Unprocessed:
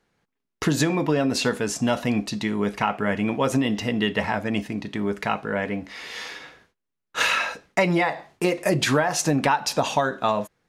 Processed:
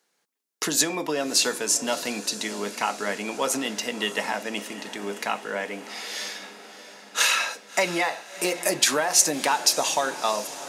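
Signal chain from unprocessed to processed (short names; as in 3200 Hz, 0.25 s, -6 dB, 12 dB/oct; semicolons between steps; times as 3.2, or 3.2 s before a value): steep high-pass 150 Hz 36 dB/oct; tone controls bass -14 dB, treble +13 dB; on a send: diffused feedback echo 0.659 s, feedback 64%, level -14.5 dB; on the sum: gain -2.5 dB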